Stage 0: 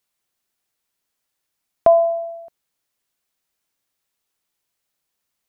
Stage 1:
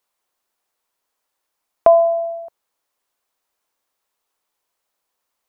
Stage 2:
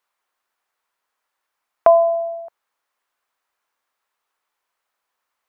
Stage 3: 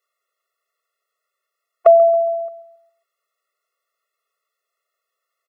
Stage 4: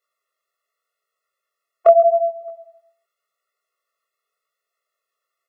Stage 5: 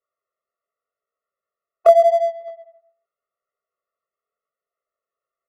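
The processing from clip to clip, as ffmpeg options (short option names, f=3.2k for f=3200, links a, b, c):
-filter_complex "[0:a]equalizer=f=125:t=o:w=1:g=-9,equalizer=f=500:t=o:w=1:g=5,equalizer=f=1k:t=o:w=1:g=8,asplit=2[a][b];[b]acompressor=threshold=-18dB:ratio=6,volume=-1dB[c];[a][c]amix=inputs=2:normalize=0,volume=-6dB"
-af "equalizer=f=1.5k:t=o:w=2.2:g=10.5,volume=-6dB"
-filter_complex "[0:a]asplit=2[a][b];[b]adelay=137,lowpass=f=1.1k:p=1,volume=-16dB,asplit=2[c][d];[d]adelay=137,lowpass=f=1.1k:p=1,volume=0.5,asplit=2[e][f];[f]adelay=137,lowpass=f=1.1k:p=1,volume=0.5,asplit=2[g][h];[h]adelay=137,lowpass=f=1.1k:p=1,volume=0.5[i];[a][c][e][g][i]amix=inputs=5:normalize=0,afftfilt=real='re*eq(mod(floor(b*sr/1024/360),2),1)':imag='im*eq(mod(floor(b*sr/1024/360),2),1)':win_size=1024:overlap=0.75,volume=2.5dB"
-af "flanger=delay=17:depth=7.3:speed=0.84,volume=1.5dB"
-af "adynamicsmooth=sensitivity=7.5:basefreq=1.2k"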